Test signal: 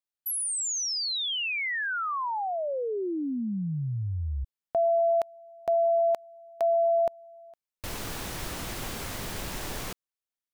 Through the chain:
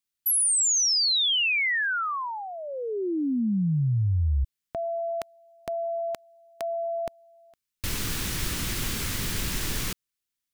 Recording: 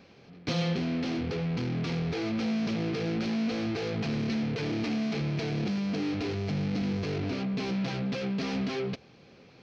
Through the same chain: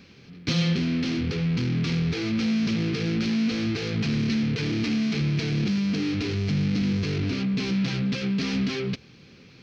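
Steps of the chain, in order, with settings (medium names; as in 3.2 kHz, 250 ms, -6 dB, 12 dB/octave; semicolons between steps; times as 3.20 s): peaking EQ 690 Hz -14 dB 1.4 oct; trim +7.5 dB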